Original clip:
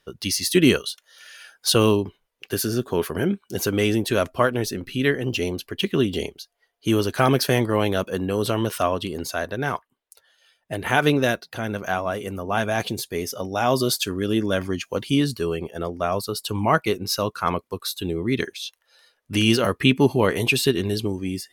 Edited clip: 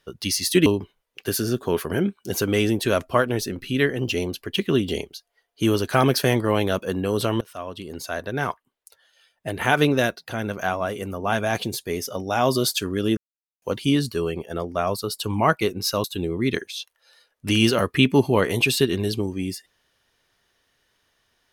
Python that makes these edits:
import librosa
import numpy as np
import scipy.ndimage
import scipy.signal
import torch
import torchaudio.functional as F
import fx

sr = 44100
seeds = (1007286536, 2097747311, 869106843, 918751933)

y = fx.edit(x, sr, fx.cut(start_s=0.66, length_s=1.25),
    fx.fade_in_from(start_s=8.66, length_s=1.0, floor_db=-23.0),
    fx.silence(start_s=14.42, length_s=0.45),
    fx.cut(start_s=17.29, length_s=0.61), tone=tone)